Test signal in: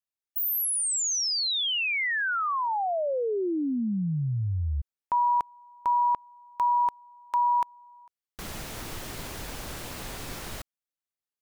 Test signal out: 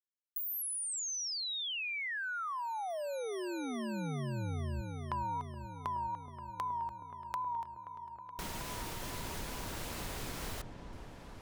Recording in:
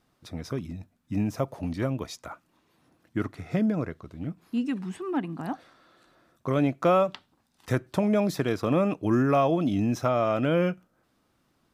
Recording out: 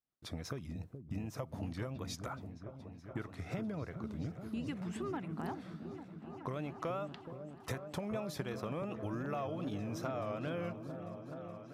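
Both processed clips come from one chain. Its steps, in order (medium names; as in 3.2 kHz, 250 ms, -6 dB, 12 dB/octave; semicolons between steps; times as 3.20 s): vibrato 2.6 Hz 74 cents; expander -53 dBFS; dynamic bell 260 Hz, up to -6 dB, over -39 dBFS, Q 1.2; compression 5:1, threshold -37 dBFS; on a send: delay with an opening low-pass 423 ms, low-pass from 400 Hz, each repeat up 1 oct, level -6 dB; on the sum: trim -1 dB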